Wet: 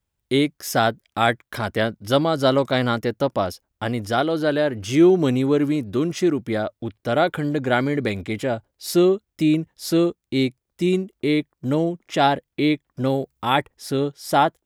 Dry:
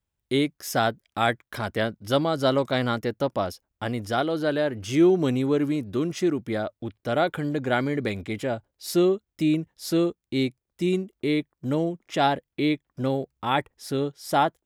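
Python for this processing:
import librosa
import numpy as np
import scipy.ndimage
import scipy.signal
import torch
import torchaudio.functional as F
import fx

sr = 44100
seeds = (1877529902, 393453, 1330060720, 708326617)

y = fx.high_shelf(x, sr, hz=fx.line((13.06, 11000.0), (13.56, 5900.0)), db=9.0, at=(13.06, 13.56), fade=0.02)
y = F.gain(torch.from_numpy(y), 4.0).numpy()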